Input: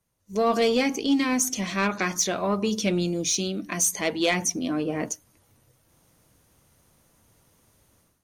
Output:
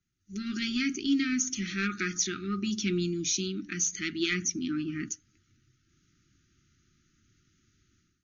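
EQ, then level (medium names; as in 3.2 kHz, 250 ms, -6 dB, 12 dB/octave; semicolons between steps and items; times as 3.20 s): brick-wall FIR band-stop 400–1200 Hz; brick-wall FIR low-pass 7 kHz; -4.0 dB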